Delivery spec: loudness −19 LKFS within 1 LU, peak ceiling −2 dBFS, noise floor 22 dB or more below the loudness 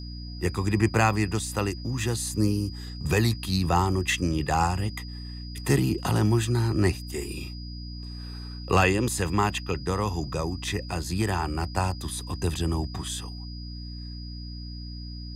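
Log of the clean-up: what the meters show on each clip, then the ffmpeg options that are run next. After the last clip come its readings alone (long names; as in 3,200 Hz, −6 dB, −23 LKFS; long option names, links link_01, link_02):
mains hum 60 Hz; hum harmonics up to 300 Hz; level of the hum −35 dBFS; interfering tone 4,900 Hz; level of the tone −44 dBFS; integrated loudness −26.5 LKFS; sample peak −8.0 dBFS; target loudness −19.0 LKFS
→ -af "bandreject=frequency=60:width_type=h:width=4,bandreject=frequency=120:width_type=h:width=4,bandreject=frequency=180:width_type=h:width=4,bandreject=frequency=240:width_type=h:width=4,bandreject=frequency=300:width_type=h:width=4"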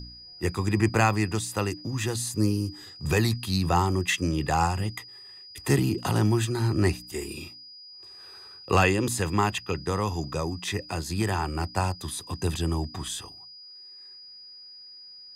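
mains hum none found; interfering tone 4,900 Hz; level of the tone −44 dBFS
→ -af "bandreject=frequency=4900:width=30"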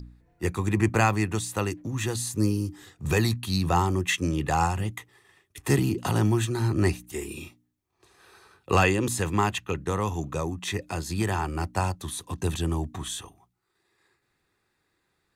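interfering tone none found; integrated loudness −27.0 LKFS; sample peak −8.0 dBFS; target loudness −19.0 LKFS
→ -af "volume=8dB,alimiter=limit=-2dB:level=0:latency=1"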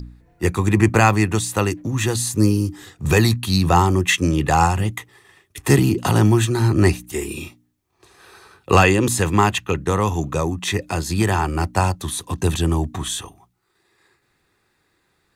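integrated loudness −19.0 LKFS; sample peak −2.0 dBFS; background noise floor −67 dBFS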